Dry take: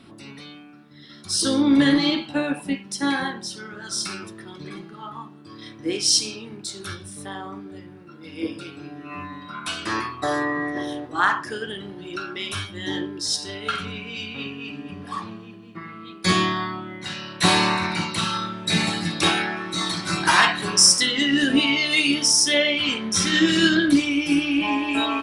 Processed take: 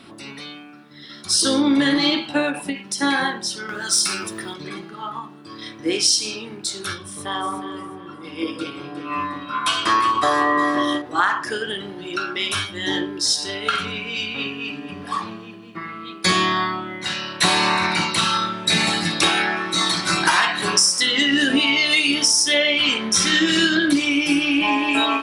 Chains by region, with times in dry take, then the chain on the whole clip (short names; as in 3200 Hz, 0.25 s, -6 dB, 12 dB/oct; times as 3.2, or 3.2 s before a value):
3.69–4.54 high shelf 7700 Hz +12 dB + upward compressor, threshold -28 dBFS + hard clip -14 dBFS
6.98–11.02 small resonant body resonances 1100/3200 Hz, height 11 dB, ringing for 25 ms + echo with dull and thin repeats by turns 0.18 s, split 970 Hz, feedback 60%, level -5.5 dB + mismatched tape noise reduction decoder only
whole clip: low shelf 240 Hz -9.5 dB; compressor 6:1, threshold -21 dBFS; ending taper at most 160 dB/s; gain +7 dB